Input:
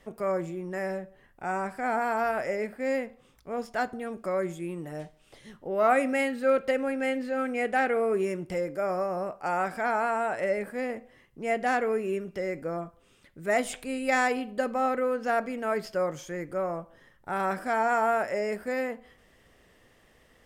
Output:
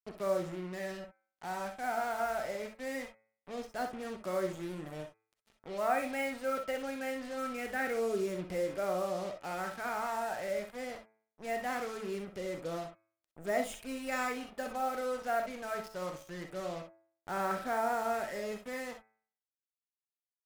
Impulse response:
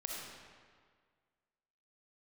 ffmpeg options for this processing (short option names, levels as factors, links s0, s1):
-filter_complex "[0:a]aphaser=in_gain=1:out_gain=1:delay=1.4:decay=0.35:speed=0.23:type=sinusoidal,acrusher=bits=5:mix=0:aa=0.5,bandreject=f=110.1:t=h:w=4,bandreject=f=220.2:t=h:w=4,bandreject=f=330.3:t=h:w=4,bandreject=f=440.4:t=h:w=4,bandreject=f=550.5:t=h:w=4,bandreject=f=660.6:t=h:w=4,bandreject=f=770.7:t=h:w=4,bandreject=f=880.8:t=h:w=4,bandreject=f=990.9:t=h:w=4,bandreject=f=1101:t=h:w=4,bandreject=f=1211.1:t=h:w=4,bandreject=f=1321.2:t=h:w=4,bandreject=f=1431.3:t=h:w=4,bandreject=f=1541.4:t=h:w=4,bandreject=f=1651.5:t=h:w=4,bandreject=f=1761.6:t=h:w=4,bandreject=f=1871.7:t=h:w=4,bandreject=f=1981.8:t=h:w=4,bandreject=f=2091.9:t=h:w=4,bandreject=f=2202:t=h:w=4,bandreject=f=2312.1:t=h:w=4,bandreject=f=2422.2:t=h:w=4,bandreject=f=2532.3:t=h:w=4[s0];[1:a]atrim=start_sample=2205,atrim=end_sample=3087[s1];[s0][s1]afir=irnorm=-1:irlink=0,volume=0.531"